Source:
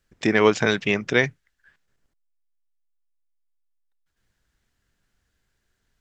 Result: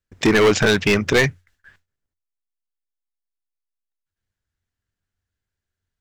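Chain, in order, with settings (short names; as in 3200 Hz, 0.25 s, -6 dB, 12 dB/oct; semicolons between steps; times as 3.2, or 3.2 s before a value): gate with hold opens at -52 dBFS; bell 90 Hz +15 dB 0.26 oct; hard clip -19 dBFS, distortion -5 dB; gain +8.5 dB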